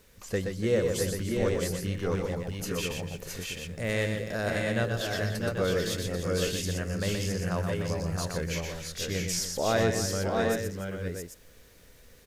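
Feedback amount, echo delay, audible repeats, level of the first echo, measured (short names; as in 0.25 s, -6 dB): no steady repeat, 0.123 s, 4, -6.0 dB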